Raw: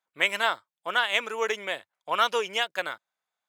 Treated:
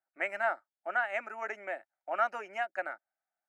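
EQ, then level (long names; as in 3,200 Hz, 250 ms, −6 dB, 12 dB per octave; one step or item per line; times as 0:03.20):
resonant band-pass 740 Hz, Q 0.85
phaser with its sweep stopped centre 690 Hz, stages 8
0.0 dB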